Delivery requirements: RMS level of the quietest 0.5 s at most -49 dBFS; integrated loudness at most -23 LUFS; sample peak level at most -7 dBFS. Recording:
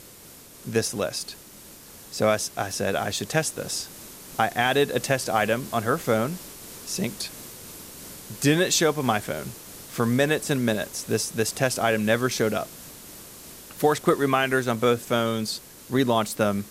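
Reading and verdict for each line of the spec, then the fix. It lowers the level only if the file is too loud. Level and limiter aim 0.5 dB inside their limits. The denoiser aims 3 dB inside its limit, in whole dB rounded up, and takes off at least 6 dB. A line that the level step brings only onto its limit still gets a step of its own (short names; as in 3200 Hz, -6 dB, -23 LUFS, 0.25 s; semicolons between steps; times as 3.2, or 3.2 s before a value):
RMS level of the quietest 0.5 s -47 dBFS: fail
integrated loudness -24.5 LUFS: OK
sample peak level -6.0 dBFS: fail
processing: denoiser 6 dB, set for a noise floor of -47 dBFS; limiter -7.5 dBFS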